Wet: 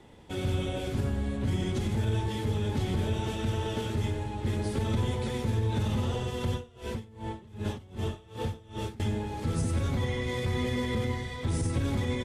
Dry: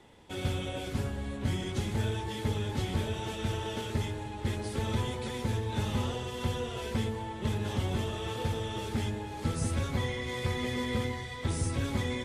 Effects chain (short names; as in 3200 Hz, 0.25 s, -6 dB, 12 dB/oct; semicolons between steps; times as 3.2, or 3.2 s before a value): low shelf 480 Hz +6 dB; limiter -21 dBFS, peak gain reduction 7.5 dB; echo 91 ms -11 dB; 6.52–9 dB-linear tremolo 2.6 Hz, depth 24 dB